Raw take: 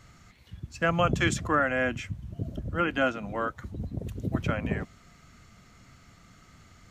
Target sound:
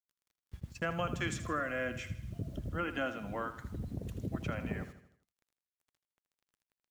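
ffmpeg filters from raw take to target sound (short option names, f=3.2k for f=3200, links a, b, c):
-filter_complex "[0:a]agate=range=-22dB:threshold=-41dB:ratio=16:detection=peak,acompressor=threshold=-40dB:ratio=2,acrusher=bits=10:mix=0:aa=0.000001,asettb=1/sr,asplit=3[a][b][c];[a]atrim=end=1.344[d];[b]atrim=start=1.34:end=2.34,asetpts=PTS-STARTPTS,afade=t=in:d=0.004:c=qsin,afade=t=out:st=0.996:d=0.004:c=qsin,asuperstop=centerf=870:order=8:qfactor=3.5[e];[c]atrim=start=2.336[f];[d][e]acrossfade=d=0.004:c1=hsin:c2=qsin[g];[g][f]acrossfade=d=0.004:c1=qsin:c2=hsin,aecho=1:1:80|160|240|320|400:0.251|0.118|0.0555|0.0261|0.0123"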